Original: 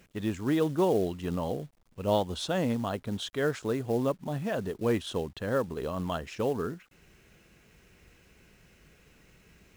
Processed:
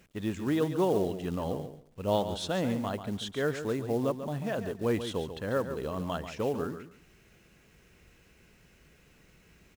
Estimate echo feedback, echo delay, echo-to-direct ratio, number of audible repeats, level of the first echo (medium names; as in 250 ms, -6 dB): 18%, 140 ms, -10.0 dB, 2, -10.0 dB